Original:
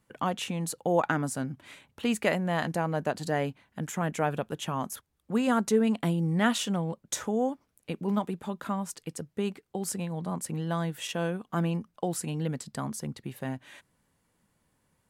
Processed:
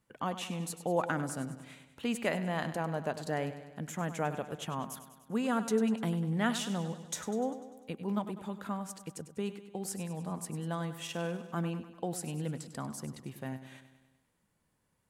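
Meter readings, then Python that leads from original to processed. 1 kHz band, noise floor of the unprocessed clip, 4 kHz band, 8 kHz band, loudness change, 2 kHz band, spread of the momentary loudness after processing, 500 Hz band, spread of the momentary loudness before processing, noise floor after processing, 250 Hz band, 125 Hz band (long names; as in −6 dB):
−5.0 dB, −75 dBFS, −5.0 dB, −5.0 dB, −5.0 dB, −5.0 dB, 12 LU, −5.0 dB, 12 LU, −76 dBFS, −5.0 dB, −5.0 dB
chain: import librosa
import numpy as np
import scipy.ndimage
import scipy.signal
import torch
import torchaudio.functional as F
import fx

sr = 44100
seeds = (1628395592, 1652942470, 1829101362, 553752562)

y = fx.echo_feedback(x, sr, ms=99, feedback_pct=59, wet_db=-12.5)
y = y * 10.0 ** (-5.5 / 20.0)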